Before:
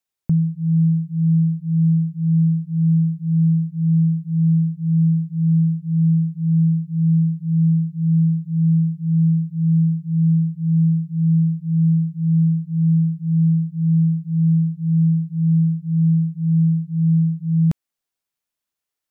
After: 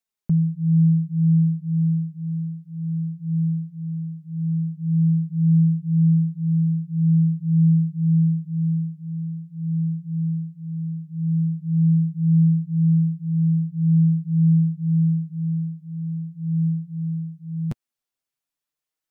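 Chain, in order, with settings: flange 0.15 Hz, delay 4.4 ms, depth 6.1 ms, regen +8%

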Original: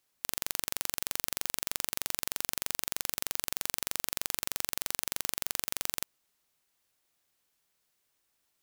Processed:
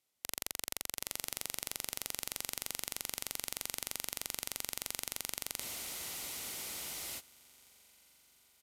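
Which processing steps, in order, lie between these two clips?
HPF 46 Hz 6 dB/oct; bell 1700 Hz -13.5 dB 0.2 oct; formant shift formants -4 st; on a send: diffused feedback echo 0.945 s, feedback 51%, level -15.5 dB; on the sum: downsampling 32000 Hz; spectral freeze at 5.63, 1.56 s; gain -4 dB

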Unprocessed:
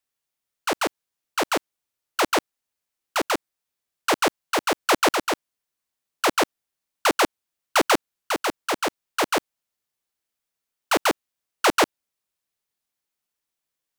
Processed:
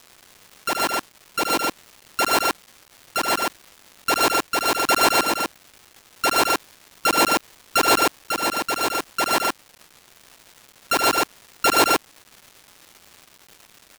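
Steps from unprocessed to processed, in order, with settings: sample sorter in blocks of 32 samples; loudspeakers at several distances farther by 26 m -5 dB, 42 m -1 dB; crackle 570/s -35 dBFS

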